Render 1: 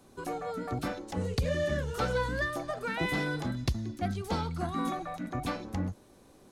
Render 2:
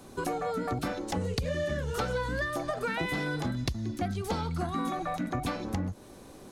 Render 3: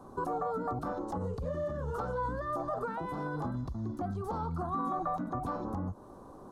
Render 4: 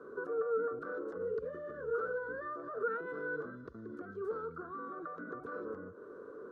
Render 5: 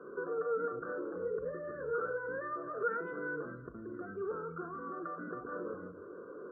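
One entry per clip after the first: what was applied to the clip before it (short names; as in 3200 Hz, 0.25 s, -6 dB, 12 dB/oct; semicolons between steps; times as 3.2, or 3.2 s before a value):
compressor, threshold -37 dBFS, peak gain reduction 13 dB; gain +8.5 dB
limiter -26 dBFS, peak gain reduction 10.5 dB; resonant high shelf 1600 Hz -12.5 dB, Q 3; gain -2 dB
limiter -34 dBFS, peak gain reduction 10 dB; double band-pass 810 Hz, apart 1.7 oct; gain +12.5 dB
loudest bins only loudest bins 64; shoebox room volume 460 m³, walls furnished, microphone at 0.88 m; gain +1 dB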